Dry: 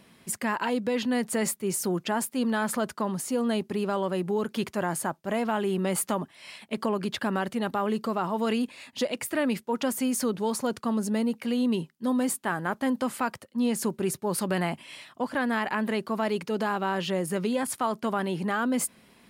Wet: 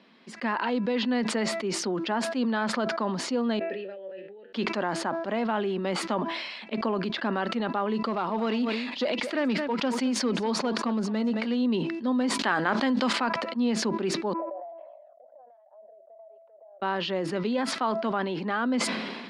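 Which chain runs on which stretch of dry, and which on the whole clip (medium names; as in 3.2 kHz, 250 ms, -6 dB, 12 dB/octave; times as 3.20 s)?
3.59–4.53 s: vowel filter e + feedback comb 96 Hz, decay 0.22 s, mix 80%
8.05–11.57 s: treble shelf 12 kHz +10 dB + hard clipper -20.5 dBFS + delay 218 ms -15.5 dB
12.39–13.13 s: treble shelf 2.2 kHz +10 dB + level flattener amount 70%
14.33–16.82 s: Butterworth band-pass 630 Hz, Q 5.7 + compression, threshold -48 dBFS + cancelling through-zero flanger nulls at 1.2 Hz, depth 1.2 ms
whole clip: Chebyshev band-pass 220–4500 Hz, order 3; de-hum 331.5 Hz, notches 8; decay stretcher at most 34 dB/s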